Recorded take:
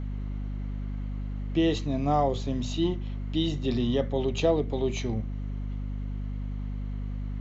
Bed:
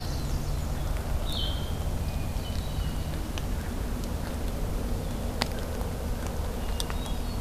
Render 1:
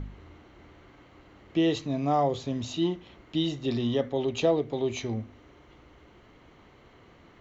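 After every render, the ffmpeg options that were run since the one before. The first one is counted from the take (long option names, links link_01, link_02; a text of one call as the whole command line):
ffmpeg -i in.wav -af "bandreject=frequency=50:width_type=h:width=4,bandreject=frequency=100:width_type=h:width=4,bandreject=frequency=150:width_type=h:width=4,bandreject=frequency=200:width_type=h:width=4,bandreject=frequency=250:width_type=h:width=4" out.wav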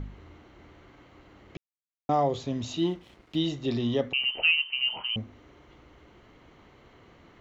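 ffmpeg -i in.wav -filter_complex "[0:a]asettb=1/sr,asplit=3[link_01][link_02][link_03];[link_01]atrim=end=2.784[link_04];[link_02]atrim=start=2.78:end=3.4,asetpts=PTS-STARTPTS,afade=type=in:duration=0.004:curve=qsin,afade=type=out:start_time=0.616:duration=0.004:curve=qsin,aeval=exprs='sgn(val(0))*max(abs(val(0))-0.00126,0)':channel_layout=same[link_05];[link_03]atrim=start=3.396[link_06];[link_04][link_05]acrossfade=duration=0.004:curve1=hsin:curve2=qsin[link_07];[link_07][link_06]acrossfade=duration=0.004:curve1=qsin:curve2=hsin,asettb=1/sr,asplit=3[link_08][link_09][link_10];[link_08]atrim=end=4.134[link_11];[link_09]atrim=start=4.13:end=5.16,asetpts=PTS-STARTPTS,afade=type=in:duration=0.004:curve=qsin,afade=type=out:start_time=1.026:duration=0.004:curve=qsin,lowpass=frequency=2700:width_type=q:width=0.5098,lowpass=frequency=2700:width_type=q:width=0.6013,lowpass=frequency=2700:width_type=q:width=0.9,lowpass=frequency=2700:width_type=q:width=2.563,afreqshift=-3200[link_12];[link_10]atrim=start=5.156[link_13];[link_11][link_12]acrossfade=duration=0.004:curve1=hsin:curve2=qsin[link_14];[link_14][link_13]acrossfade=duration=0.004:curve1=qsin:curve2=hsin,asplit=3[link_15][link_16][link_17];[link_15]atrim=end=1.57,asetpts=PTS-STARTPTS,afade=type=out:start_time=1.566:duration=0.004:curve=hsin[link_18];[link_16]atrim=start=1.57:end=2.09,asetpts=PTS-STARTPTS,volume=0[link_19];[link_17]atrim=start=2.09,asetpts=PTS-STARTPTS,afade=type=in:duration=0.004:curve=hsin[link_20];[link_18][link_19][link_20]concat=n=3:v=0:a=1" out.wav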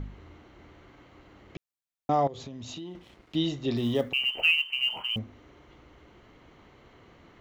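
ffmpeg -i in.wav -filter_complex "[0:a]asettb=1/sr,asplit=3[link_01][link_02][link_03];[link_01]atrim=end=2.274[link_04];[link_02]atrim=start=2.27:end=2.95,asetpts=PTS-STARTPTS,afade=type=in:duration=0.004:curve=qsin,afade=type=out:start_time=0.676:duration=0.004:curve=qsin,acompressor=threshold=-36dB:ratio=12:attack=3.2:release=140:knee=1:detection=peak[link_05];[link_03]atrim=start=2.946[link_06];[link_04][link_05]acrossfade=duration=0.004:curve1=hsin:curve2=qsin[link_07];[link_07][link_06]acrossfade=duration=0.004:curve1=qsin:curve2=hsin,asplit=3[link_08][link_09][link_10];[link_08]afade=type=out:start_time=3.76:duration=0.02[link_11];[link_09]acrusher=bits=8:mode=log:mix=0:aa=0.000001,afade=type=in:start_time=3.76:duration=0.02,afade=type=out:start_time=5.17:duration=0.02[link_12];[link_10]afade=type=in:start_time=5.17:duration=0.02[link_13];[link_11][link_12][link_13]amix=inputs=3:normalize=0" out.wav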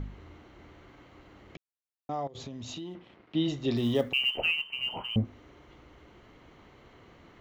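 ffmpeg -i in.wav -filter_complex "[0:a]asplit=3[link_01][link_02][link_03];[link_01]afade=type=out:start_time=2.94:duration=0.02[link_04];[link_02]highpass=110,lowpass=3000,afade=type=in:start_time=2.94:duration=0.02,afade=type=out:start_time=3.47:duration=0.02[link_05];[link_03]afade=type=in:start_time=3.47:duration=0.02[link_06];[link_04][link_05][link_06]amix=inputs=3:normalize=0,asettb=1/sr,asplit=3[link_07][link_08][link_09];[link_07]atrim=end=4.374[link_10];[link_08]atrim=start=4.37:end=5.25,asetpts=PTS-STARTPTS,afade=type=in:duration=0.004:curve=qsin,afade=type=out:start_time=0.876:duration=0.004:curve=qsin,tiltshelf=frequency=1200:gain=8.5[link_11];[link_09]atrim=start=5.246[link_12];[link_10][link_11]acrossfade=duration=0.004:curve1=hsin:curve2=qsin[link_13];[link_13][link_12]acrossfade=duration=0.004:curve1=qsin:curve2=hsin,asplit=3[link_14][link_15][link_16];[link_14]atrim=end=1.562[link_17];[link_15]atrim=start=1.558:end=2.352,asetpts=PTS-STARTPTS,volume=-9.5dB[link_18];[link_16]atrim=start=2.348[link_19];[link_17][link_18]acrossfade=duration=0.004:curve1=hsin:curve2=hsin[link_20];[link_20][link_19]acrossfade=duration=0.004:curve1=hsin:curve2=hsin" out.wav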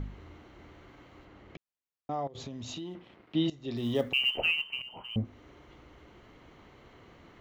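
ffmpeg -i in.wav -filter_complex "[0:a]asettb=1/sr,asplit=3[link_01][link_02][link_03];[link_01]atrim=end=1.254[link_04];[link_02]atrim=start=1.25:end=2.38,asetpts=PTS-STARTPTS,afade=type=in:duration=0.004:curve=qsin,afade=type=out:start_time=1.126:duration=0.004:curve=qsin,highshelf=frequency=5600:gain=-9[link_05];[link_03]atrim=start=2.376[link_06];[link_04][link_05]acrossfade=duration=0.004:curve1=hsin:curve2=qsin[link_07];[link_07][link_06]acrossfade=duration=0.004:curve1=qsin:curve2=hsin,asplit=3[link_08][link_09][link_10];[link_08]atrim=end=3.5,asetpts=PTS-STARTPTS,afade=type=out:start_time=3.496:duration=0.004:curve=hsin:silence=0.133352[link_11];[link_09]atrim=start=3.5:end=4.82,asetpts=PTS-STARTPTS,afade=type=in:duration=0.63:silence=0.133352,afade=type=out:start_time=1.316:duration=0.004:curve=hsin:silence=0.177828[link_12];[link_10]atrim=start=4.82,asetpts=PTS-STARTPTS,afade=type=in:duration=0.66:silence=0.177828[link_13];[link_11][link_12][link_13]concat=n=3:v=0:a=1" out.wav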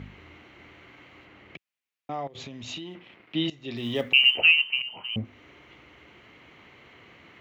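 ffmpeg -i in.wav -af "highpass=83,equalizer=frequency=2400:width_type=o:width=1.1:gain=11.5" out.wav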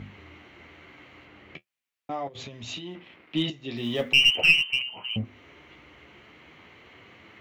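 ffmpeg -i in.wav -filter_complex "[0:a]flanger=delay=9.1:depth=5.3:regen=-40:speed=0.41:shape=triangular,asplit=2[link_01][link_02];[link_02]aeval=exprs='clip(val(0),-1,0.0422)':channel_layout=same,volume=-3dB[link_03];[link_01][link_03]amix=inputs=2:normalize=0" out.wav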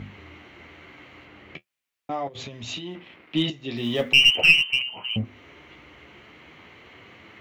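ffmpeg -i in.wav -af "volume=3dB" out.wav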